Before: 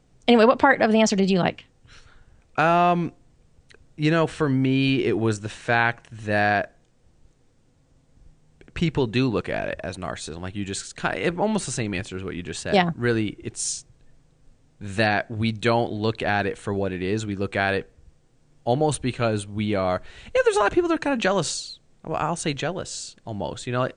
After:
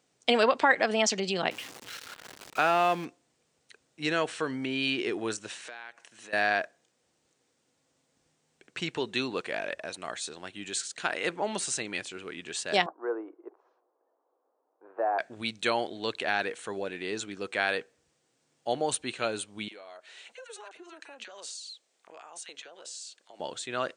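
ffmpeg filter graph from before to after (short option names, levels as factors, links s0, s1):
-filter_complex "[0:a]asettb=1/sr,asplit=3[s0][s1][s2];[s0]atrim=end=1.514[s3];[s1]atrim=start=1.51:end=3.05,asetpts=PTS-STARTPTS,afade=t=in:d=0.004:c=qsin,afade=t=out:st=1.536:d=0.004:c=qsin,aeval=exprs='val(0)+0.5*0.0266*sgn(val(0))':c=same,highshelf=f=7000:g=-7.5[s4];[s2]atrim=start=3.046[s5];[s3][s4]acrossfade=d=0.004:c1=hsin:c2=qsin[s6];[s6][s5]acrossfade=d=0.004:c1=qsin:c2=hsin,asettb=1/sr,asplit=3[s7][s8][s9];[s7]atrim=end=5.674[s10];[s8]atrim=start=5.67:end=6.33,asetpts=PTS-STARTPTS,afade=t=in:d=0.004:c=qsin,afade=t=out:st=0.656:d=0.004:c=qsin,highpass=170,acompressor=threshold=0.0158:ratio=5:attack=3.2:release=140:knee=1:detection=peak,bass=f=250:g=-5,treble=f=4000:g=2[s11];[s9]atrim=start=6.326[s12];[s10][s11]acrossfade=d=0.004:c1=hsin:c2=qsin[s13];[s13][s12]acrossfade=d=0.004:c1=qsin:c2=hsin,asettb=1/sr,asplit=3[s14][s15][s16];[s14]atrim=end=12.864[s17];[s15]atrim=start=12.86:end=15.19,asetpts=PTS-STARTPTS,afade=t=in:d=0.004:c=qsin,afade=t=out:st=2.326:d=0.004:c=qsin,lowshelf=f=440:g=-11.5,acontrast=86,asuperpass=centerf=600:order=8:qfactor=0.76[s18];[s16]atrim=start=15.186[s19];[s17][s18]acrossfade=d=0.004:c1=hsin:c2=qsin[s20];[s20][s19]acrossfade=d=0.004:c1=qsin:c2=hsin,asettb=1/sr,asplit=3[s21][s22][s23];[s21]atrim=end=19.684[s24];[s22]atrim=start=19.68:end=23.4,asetpts=PTS-STARTPTS,afade=t=in:d=0.004:c=qsin,afade=t=out:st=3.716:d=0.004:c=qsin,highpass=450,acompressor=threshold=0.0112:ratio=4:attack=3.2:release=140:knee=1:detection=peak,acrossover=split=1200[s25][s26];[s25]adelay=30[s27];[s27][s26]amix=inputs=2:normalize=0,atrim=end_sample=164052[s28];[s23]atrim=start=23.396[s29];[s24][s28]acrossfade=d=0.004:c1=hsin:c2=qsin[s30];[s30][s29]acrossfade=d=0.004:c1=qsin:c2=hsin,highpass=370,equalizer=f=560:w=0.31:g=-6.5"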